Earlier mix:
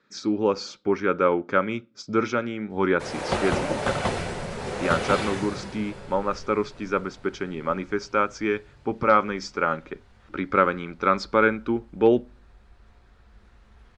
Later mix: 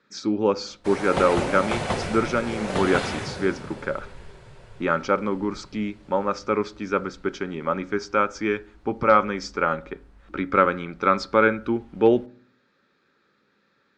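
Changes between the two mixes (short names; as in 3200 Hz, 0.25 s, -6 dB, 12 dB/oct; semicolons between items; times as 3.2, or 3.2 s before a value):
speech: send +11.0 dB; background: entry -2.15 s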